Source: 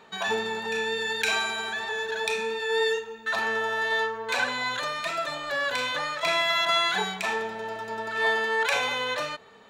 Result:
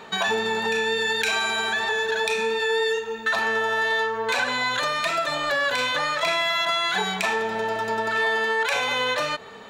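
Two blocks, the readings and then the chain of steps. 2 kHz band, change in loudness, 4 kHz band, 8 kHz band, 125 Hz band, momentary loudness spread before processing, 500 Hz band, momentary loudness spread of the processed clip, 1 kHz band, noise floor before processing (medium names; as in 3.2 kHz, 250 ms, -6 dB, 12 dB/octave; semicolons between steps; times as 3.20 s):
+3.5 dB, +3.5 dB, +3.0 dB, +3.5 dB, +5.0 dB, 7 LU, +4.0 dB, 3 LU, +4.0 dB, -46 dBFS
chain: in parallel at +1.5 dB: peak limiter -18.5 dBFS, peak gain reduction 8.5 dB; on the sum: compression 3:1, threshold -26 dBFS, peak gain reduction 9 dB; trim +3.5 dB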